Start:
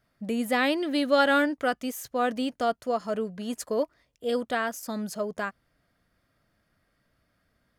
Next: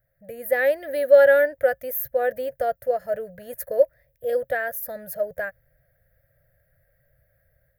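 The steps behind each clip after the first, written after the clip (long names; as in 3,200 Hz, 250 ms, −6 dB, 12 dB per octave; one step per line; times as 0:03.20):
drawn EQ curve 140 Hz 0 dB, 220 Hz −25 dB, 380 Hz −22 dB, 540 Hz +4 dB, 1,100 Hz −27 dB, 1,700 Hz −2 dB, 2,900 Hz −22 dB, 7,800 Hz −20 dB, 15,000 Hz +13 dB
automatic gain control gain up to 6.5 dB
level +2.5 dB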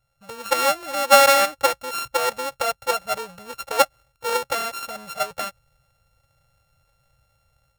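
samples sorted by size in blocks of 32 samples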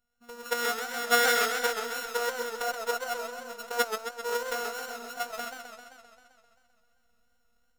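phases set to zero 239 Hz
feedback echo with a swinging delay time 131 ms, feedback 68%, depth 146 cents, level −7 dB
level −6 dB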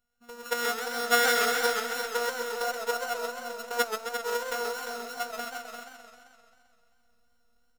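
single-tap delay 348 ms −7.5 dB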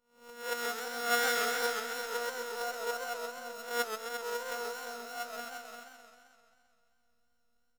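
peak hold with a rise ahead of every peak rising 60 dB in 0.50 s
level −7 dB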